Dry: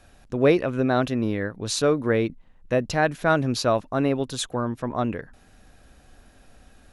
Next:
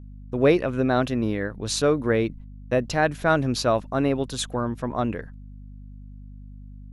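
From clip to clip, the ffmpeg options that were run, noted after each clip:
ffmpeg -i in.wav -af "agate=range=-33dB:threshold=-41dB:ratio=16:detection=peak,aeval=exprs='val(0)+0.01*(sin(2*PI*50*n/s)+sin(2*PI*2*50*n/s)/2+sin(2*PI*3*50*n/s)/3+sin(2*PI*4*50*n/s)/4+sin(2*PI*5*50*n/s)/5)':channel_layout=same" out.wav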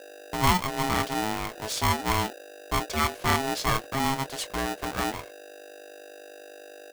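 ffmpeg -i in.wav -filter_complex "[0:a]asplit=2[link_01][link_02];[link_02]adelay=25,volume=-13dB[link_03];[link_01][link_03]amix=inputs=2:normalize=0,aeval=exprs='val(0)*sgn(sin(2*PI*540*n/s))':channel_layout=same,volume=-4.5dB" out.wav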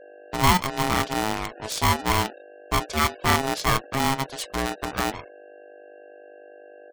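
ffmpeg -i in.wav -filter_complex "[0:a]asplit=2[link_01][link_02];[link_02]acrusher=bits=3:mix=0:aa=0.000001,volume=-6.5dB[link_03];[link_01][link_03]amix=inputs=2:normalize=0,afftfilt=real='re*gte(hypot(re,im),0.00794)':imag='im*gte(hypot(re,im),0.00794)':win_size=1024:overlap=0.75" out.wav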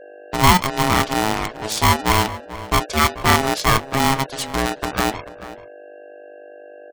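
ffmpeg -i in.wav -filter_complex "[0:a]asplit=2[link_01][link_02];[link_02]adelay=437.3,volume=-15dB,highshelf=frequency=4000:gain=-9.84[link_03];[link_01][link_03]amix=inputs=2:normalize=0,volume=5.5dB" out.wav

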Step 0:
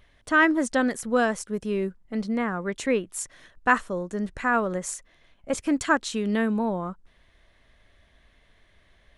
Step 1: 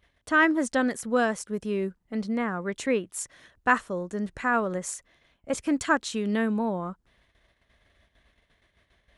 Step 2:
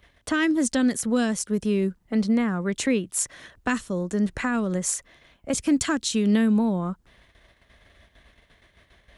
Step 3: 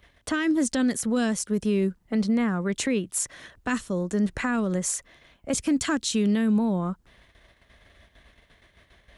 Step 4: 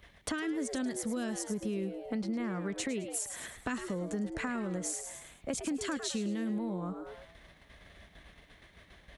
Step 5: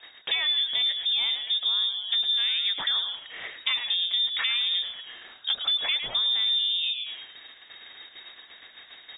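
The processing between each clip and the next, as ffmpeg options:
ffmpeg -i in.wav -af "agate=range=-9dB:threshold=-58dB:ratio=16:detection=peak,highpass=43,volume=-1.5dB" out.wav
ffmpeg -i in.wav -filter_complex "[0:a]acrossover=split=290|3000[link_01][link_02][link_03];[link_02]acompressor=threshold=-38dB:ratio=6[link_04];[link_01][link_04][link_03]amix=inputs=3:normalize=0,volume=8.5dB" out.wav
ffmpeg -i in.wav -af "alimiter=limit=-16.5dB:level=0:latency=1:release=12" out.wav
ffmpeg -i in.wav -filter_complex "[0:a]asplit=2[link_01][link_02];[link_02]asplit=4[link_03][link_04][link_05][link_06];[link_03]adelay=106,afreqshift=120,volume=-10.5dB[link_07];[link_04]adelay=212,afreqshift=240,volume=-18.5dB[link_08];[link_05]adelay=318,afreqshift=360,volume=-26.4dB[link_09];[link_06]adelay=424,afreqshift=480,volume=-34.4dB[link_10];[link_07][link_08][link_09][link_10]amix=inputs=4:normalize=0[link_11];[link_01][link_11]amix=inputs=2:normalize=0,acompressor=threshold=-34dB:ratio=4" out.wav
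ffmpeg -i in.wav -filter_complex "[0:a]asplit=2[link_01][link_02];[link_02]asoftclip=type=hard:threshold=-32dB,volume=-9dB[link_03];[link_01][link_03]amix=inputs=2:normalize=0,lowpass=frequency=3200:width_type=q:width=0.5098,lowpass=frequency=3200:width_type=q:width=0.6013,lowpass=frequency=3200:width_type=q:width=0.9,lowpass=frequency=3200:width_type=q:width=2.563,afreqshift=-3800,volume=6.5dB" out.wav

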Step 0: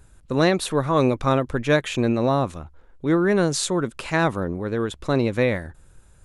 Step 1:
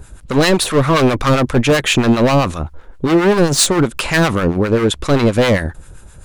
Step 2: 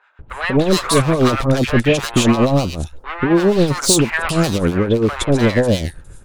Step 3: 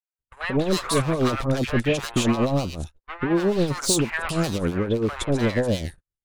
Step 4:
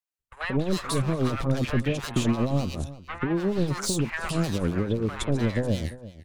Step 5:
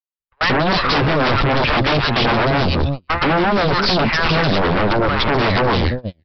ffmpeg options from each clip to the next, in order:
ffmpeg -i in.wav -filter_complex "[0:a]asplit=2[link_01][link_02];[link_02]acontrast=55,volume=2dB[link_03];[link_01][link_03]amix=inputs=2:normalize=0,asoftclip=type=hard:threshold=-13dB,acrossover=split=870[link_04][link_05];[link_04]aeval=exprs='val(0)*(1-0.7/2+0.7/2*cos(2*PI*7.6*n/s))':channel_layout=same[link_06];[link_05]aeval=exprs='val(0)*(1-0.7/2-0.7/2*cos(2*PI*7.6*n/s))':channel_layout=same[link_07];[link_06][link_07]amix=inputs=2:normalize=0,volume=6dB" out.wav
ffmpeg -i in.wav -filter_complex "[0:a]acrossover=split=840|2800[link_01][link_02][link_03];[link_01]adelay=190[link_04];[link_03]adelay=300[link_05];[link_04][link_02][link_05]amix=inputs=3:normalize=0,volume=-1dB" out.wav
ffmpeg -i in.wav -af "agate=range=-47dB:threshold=-27dB:ratio=16:detection=peak,volume=-7.5dB" out.wav
ffmpeg -i in.wav -filter_complex "[0:a]acrossover=split=230[link_01][link_02];[link_02]acompressor=threshold=-28dB:ratio=4[link_03];[link_01][link_03]amix=inputs=2:normalize=0,asplit=2[link_04][link_05];[link_05]adelay=344,volume=-16dB,highshelf=frequency=4000:gain=-7.74[link_06];[link_04][link_06]amix=inputs=2:normalize=0" out.wav
ffmpeg -i in.wav -af "agate=range=-33dB:threshold=-38dB:ratio=16:detection=peak,aresample=11025,aeval=exprs='0.237*sin(PI/2*6.31*val(0)/0.237)':channel_layout=same,aresample=44100" out.wav

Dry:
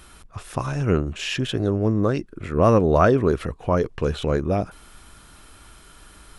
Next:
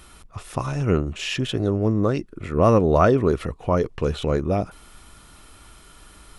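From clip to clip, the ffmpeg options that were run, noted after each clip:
ffmpeg -i in.wav -af "bandreject=frequency=1600:width=11" out.wav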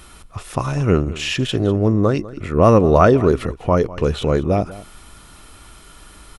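ffmpeg -i in.wav -af "aecho=1:1:199:0.126,volume=4.5dB" out.wav

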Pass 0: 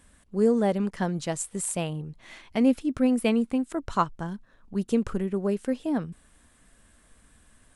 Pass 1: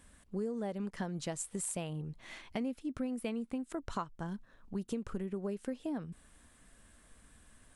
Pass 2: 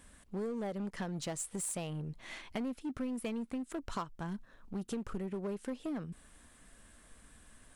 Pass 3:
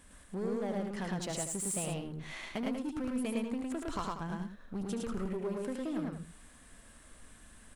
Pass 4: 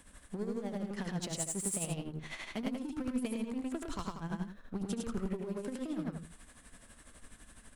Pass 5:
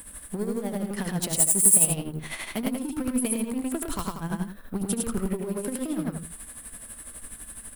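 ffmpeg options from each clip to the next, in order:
ffmpeg -i in.wav -af "acompressor=threshold=-32dB:ratio=6,volume=-2.5dB" out.wav
ffmpeg -i in.wav -filter_complex "[0:a]equalizer=frequency=91:width=0.73:gain=-2.5,asplit=2[link_01][link_02];[link_02]aeval=exprs='0.0119*(abs(mod(val(0)/0.0119+3,4)-2)-1)':channel_layout=same,volume=-6dB[link_03];[link_01][link_03]amix=inputs=2:normalize=0,volume=-1dB" out.wav
ffmpeg -i in.wav -af "aecho=1:1:75.8|107.9|189.5:0.398|0.891|0.316" out.wav
ffmpeg -i in.wav -filter_complex "[0:a]acrossover=split=300|3000[link_01][link_02][link_03];[link_02]acompressor=threshold=-41dB:ratio=6[link_04];[link_01][link_04][link_03]amix=inputs=3:normalize=0,tremolo=f=12:d=0.66,volume=3dB" out.wav
ffmpeg -i in.wav -af "aexciter=amount=8.2:drive=4.3:freq=9000,volume=8dB" out.wav

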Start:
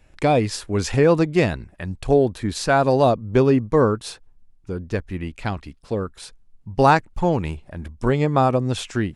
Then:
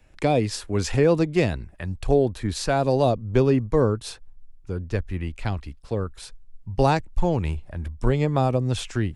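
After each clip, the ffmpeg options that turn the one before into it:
ffmpeg -i in.wav -filter_complex "[0:a]asubboost=boost=2.5:cutoff=110,acrossover=split=160|830|2000[link_01][link_02][link_03][link_04];[link_03]acompressor=threshold=-36dB:ratio=6[link_05];[link_01][link_02][link_05][link_04]amix=inputs=4:normalize=0,volume=-2dB" out.wav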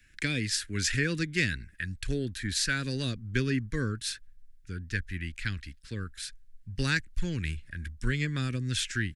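ffmpeg -i in.wav -af "firequalizer=gain_entry='entry(260,0);entry(750,-26);entry(1600,14);entry(2600,8);entry(3900,10)':delay=0.05:min_phase=1,volume=-7.5dB" out.wav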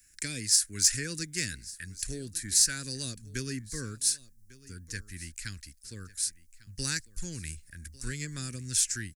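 ffmpeg -i in.wav -af "aexciter=amount=5.3:drive=8.9:freq=4900,aecho=1:1:1148:0.1,volume=-8dB" out.wav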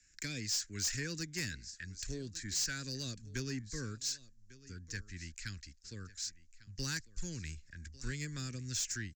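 ffmpeg -i in.wav -filter_complex "[0:a]aresample=16000,aresample=44100,acrossover=split=190[link_01][link_02];[link_02]asoftclip=type=tanh:threshold=-27.5dB[link_03];[link_01][link_03]amix=inputs=2:normalize=0,volume=-3dB" out.wav

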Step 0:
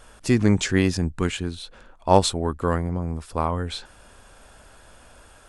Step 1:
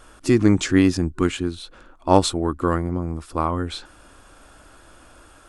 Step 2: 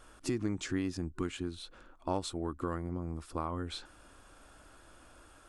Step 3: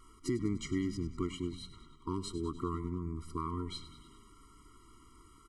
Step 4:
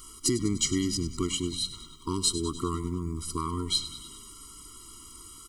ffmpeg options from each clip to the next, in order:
ffmpeg -i in.wav -af "superequalizer=6b=2.51:10b=1.58" out.wav
ffmpeg -i in.wav -af "acompressor=threshold=-24dB:ratio=3,volume=-8.5dB" out.wav
ffmpeg -i in.wav -filter_complex "[0:a]asplit=8[link_01][link_02][link_03][link_04][link_05][link_06][link_07][link_08];[link_02]adelay=99,afreqshift=-82,volume=-14dB[link_09];[link_03]adelay=198,afreqshift=-164,volume=-17.9dB[link_10];[link_04]adelay=297,afreqshift=-246,volume=-21.8dB[link_11];[link_05]adelay=396,afreqshift=-328,volume=-25.6dB[link_12];[link_06]adelay=495,afreqshift=-410,volume=-29.5dB[link_13];[link_07]adelay=594,afreqshift=-492,volume=-33.4dB[link_14];[link_08]adelay=693,afreqshift=-574,volume=-37.3dB[link_15];[link_01][link_09][link_10][link_11][link_12][link_13][link_14][link_15]amix=inputs=8:normalize=0,afftfilt=real='re*eq(mod(floor(b*sr/1024/470),2),0)':imag='im*eq(mod(floor(b*sr/1024/470),2),0)':win_size=1024:overlap=0.75" out.wav
ffmpeg -i in.wav -af "aexciter=amount=2.2:drive=9.6:freq=2900,volume=5.5dB" out.wav

